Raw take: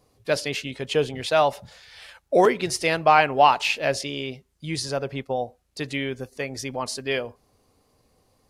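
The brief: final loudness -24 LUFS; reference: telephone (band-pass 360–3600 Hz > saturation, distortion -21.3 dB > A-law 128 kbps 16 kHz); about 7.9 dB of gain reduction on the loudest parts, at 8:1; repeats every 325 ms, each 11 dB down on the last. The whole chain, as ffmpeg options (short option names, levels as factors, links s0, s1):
-af "acompressor=threshold=0.112:ratio=8,highpass=360,lowpass=3600,aecho=1:1:325|650|975:0.282|0.0789|0.0221,asoftclip=threshold=0.2,volume=1.88" -ar 16000 -c:a pcm_alaw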